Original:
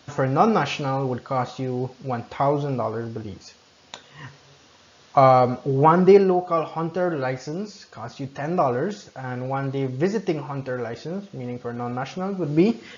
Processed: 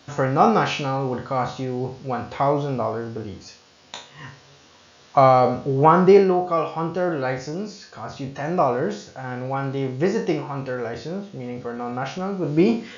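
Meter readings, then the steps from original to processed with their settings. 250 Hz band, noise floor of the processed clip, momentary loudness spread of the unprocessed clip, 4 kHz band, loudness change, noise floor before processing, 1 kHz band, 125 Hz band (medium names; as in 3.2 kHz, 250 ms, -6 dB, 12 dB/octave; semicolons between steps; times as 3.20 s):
+0.5 dB, -52 dBFS, 17 LU, +2.0 dB, +1.0 dB, -54 dBFS, +1.5 dB, 0.0 dB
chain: spectral sustain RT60 0.41 s; hum notches 60/120 Hz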